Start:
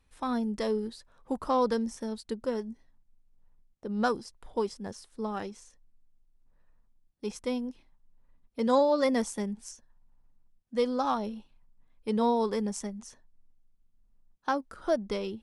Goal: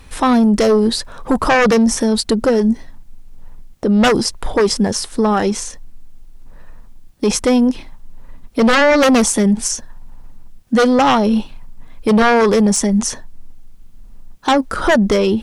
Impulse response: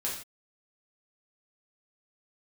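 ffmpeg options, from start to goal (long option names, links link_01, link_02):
-af "aeval=exprs='0.251*sin(PI/2*3.98*val(0)/0.251)':channel_layout=same,alimiter=level_in=19dB:limit=-1dB:release=50:level=0:latency=1,volume=-7dB"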